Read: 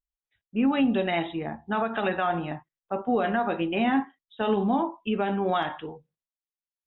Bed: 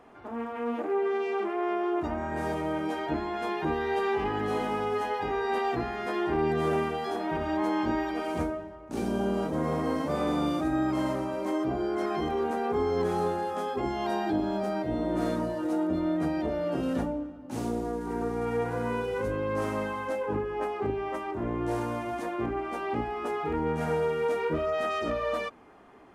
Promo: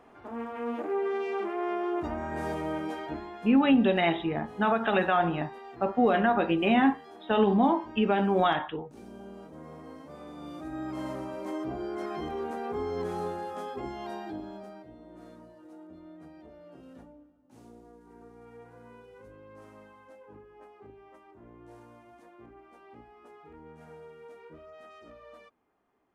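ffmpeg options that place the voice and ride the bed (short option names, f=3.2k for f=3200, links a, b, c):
-filter_complex "[0:a]adelay=2900,volume=1.5dB[a];[1:a]volume=9.5dB,afade=t=out:st=2.74:d=0.81:silence=0.177828,afade=t=in:st=10.35:d=0.88:silence=0.266073,afade=t=out:st=13.63:d=1.32:silence=0.16788[b];[a][b]amix=inputs=2:normalize=0"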